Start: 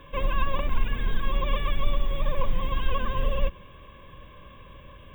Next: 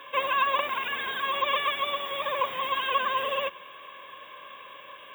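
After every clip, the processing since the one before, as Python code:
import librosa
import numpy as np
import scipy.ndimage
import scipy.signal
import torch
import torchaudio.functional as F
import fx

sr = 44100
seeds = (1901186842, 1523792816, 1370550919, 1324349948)

y = scipy.signal.sosfilt(scipy.signal.butter(2, 720.0, 'highpass', fs=sr, output='sos'), x)
y = y * 10.0 ** (8.0 / 20.0)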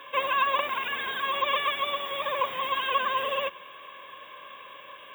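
y = x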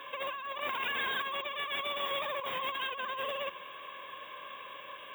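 y = fx.over_compress(x, sr, threshold_db=-32.0, ratio=-1.0)
y = y * 10.0 ** (-4.0 / 20.0)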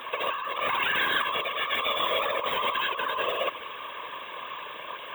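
y = fx.whisperise(x, sr, seeds[0])
y = y * 10.0 ** (7.5 / 20.0)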